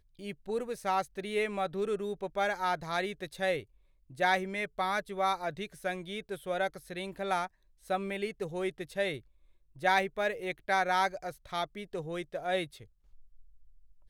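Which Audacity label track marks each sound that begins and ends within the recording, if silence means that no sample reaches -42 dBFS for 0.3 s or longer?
4.110000	7.470000	sound
7.900000	9.190000	sound
9.820000	12.820000	sound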